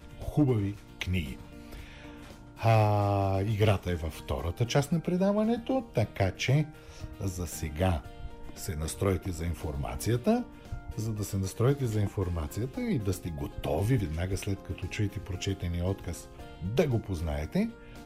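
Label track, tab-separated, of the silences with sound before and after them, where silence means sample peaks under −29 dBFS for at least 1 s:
1.320000	2.630000	silence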